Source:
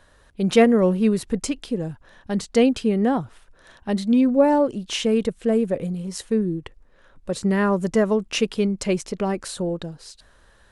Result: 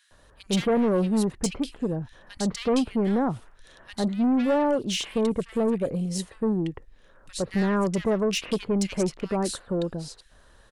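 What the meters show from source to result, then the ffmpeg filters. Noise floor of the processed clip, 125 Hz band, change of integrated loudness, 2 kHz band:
-56 dBFS, -2.0 dB, -4.0 dB, -5.0 dB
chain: -filter_complex "[0:a]asoftclip=type=tanh:threshold=-18.5dB,acrossover=split=1800[a][b];[a]adelay=110[c];[c][b]amix=inputs=2:normalize=0"

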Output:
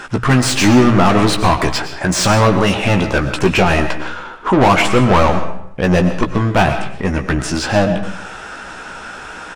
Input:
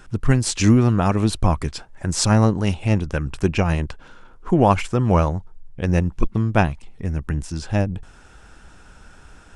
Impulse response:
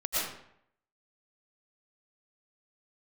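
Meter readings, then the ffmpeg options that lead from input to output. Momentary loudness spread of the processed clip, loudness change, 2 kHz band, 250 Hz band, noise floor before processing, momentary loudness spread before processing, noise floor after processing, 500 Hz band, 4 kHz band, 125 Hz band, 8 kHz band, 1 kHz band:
18 LU, +6.0 dB, +12.5 dB, +6.0 dB, -47 dBFS, 11 LU, -32 dBFS, +8.5 dB, +11.0 dB, +2.5 dB, +6.0 dB, +9.5 dB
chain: -filter_complex "[0:a]bandreject=f=60:t=h:w=6,bandreject=f=120:t=h:w=6,asplit=2[a][b];[b]highpass=f=720:p=1,volume=29dB,asoftclip=type=tanh:threshold=-3dB[c];[a][c]amix=inputs=2:normalize=0,lowpass=f=2.7k:p=1,volume=-6dB,asplit=2[d][e];[e]adelay=16,volume=-6.5dB[f];[d][f]amix=inputs=2:normalize=0,asplit=2[g][h];[1:a]atrim=start_sample=2205[i];[h][i]afir=irnorm=-1:irlink=0,volume=-15dB[j];[g][j]amix=inputs=2:normalize=0,volume=-2.5dB"

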